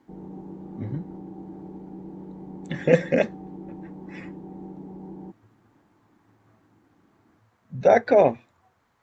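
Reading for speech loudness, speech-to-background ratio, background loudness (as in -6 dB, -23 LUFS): -22.0 LUFS, 18.5 dB, -40.5 LUFS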